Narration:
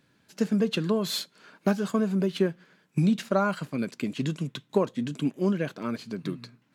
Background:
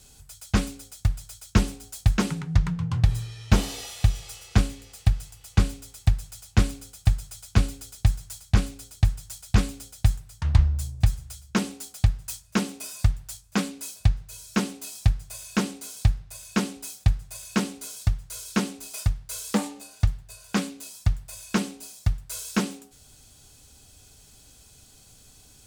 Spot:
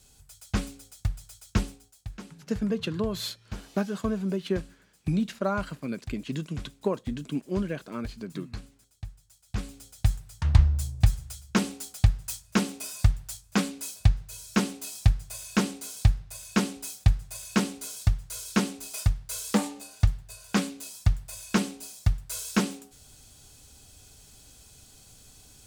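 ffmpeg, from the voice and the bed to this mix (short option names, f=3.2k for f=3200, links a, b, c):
-filter_complex "[0:a]adelay=2100,volume=-3.5dB[a];[1:a]volume=13.5dB,afade=t=out:st=1.56:d=0.38:silence=0.211349,afade=t=in:st=9.41:d=0.99:silence=0.112202[b];[a][b]amix=inputs=2:normalize=0"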